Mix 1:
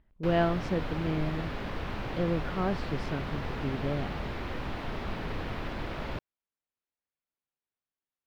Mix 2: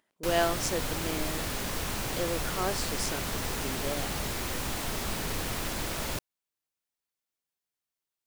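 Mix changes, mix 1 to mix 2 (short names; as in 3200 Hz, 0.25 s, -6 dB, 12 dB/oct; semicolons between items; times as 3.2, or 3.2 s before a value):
speech: add HPF 370 Hz 12 dB/oct; master: remove air absorption 350 m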